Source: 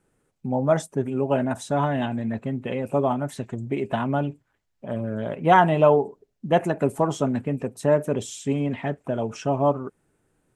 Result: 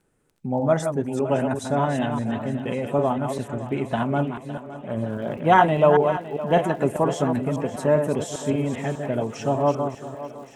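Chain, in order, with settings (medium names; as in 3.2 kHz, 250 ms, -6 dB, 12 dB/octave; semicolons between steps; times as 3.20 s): chunks repeated in reverse 199 ms, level -6.5 dB; crackle 12 per s -44 dBFS, from 5.09 s 120 per s; thinning echo 561 ms, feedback 67%, high-pass 170 Hz, level -14 dB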